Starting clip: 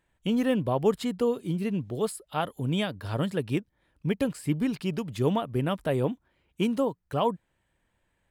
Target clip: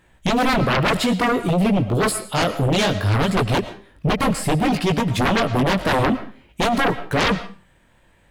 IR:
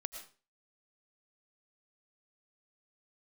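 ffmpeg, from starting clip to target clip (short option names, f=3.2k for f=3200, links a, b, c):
-filter_complex "[0:a]flanger=delay=16.5:depth=6.7:speed=0.58,aeval=exprs='0.211*sin(PI/2*7.08*val(0)/0.211)':c=same,asplit=2[a][b];[1:a]atrim=start_sample=2205,highshelf=f=10k:g=-10.5[c];[b][c]afir=irnorm=-1:irlink=0,volume=1dB[d];[a][d]amix=inputs=2:normalize=0,volume=-6.5dB"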